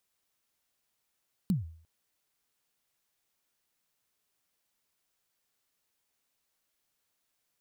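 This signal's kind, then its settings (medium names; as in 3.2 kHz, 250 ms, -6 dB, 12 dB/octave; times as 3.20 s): kick drum length 0.35 s, from 210 Hz, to 81 Hz, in 144 ms, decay 0.52 s, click on, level -21 dB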